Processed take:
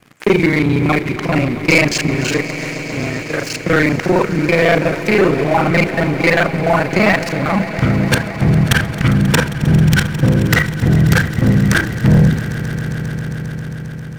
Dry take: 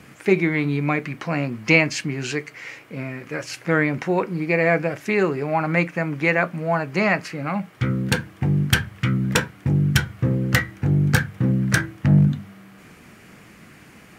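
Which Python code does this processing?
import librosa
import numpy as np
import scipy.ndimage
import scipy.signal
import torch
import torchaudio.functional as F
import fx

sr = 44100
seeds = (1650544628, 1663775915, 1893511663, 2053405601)

y = fx.local_reverse(x, sr, ms=33.0)
y = fx.leveller(y, sr, passes=3)
y = fx.echo_swell(y, sr, ms=134, loudest=5, wet_db=-17.5)
y = F.gain(torch.from_numpy(y), -2.0).numpy()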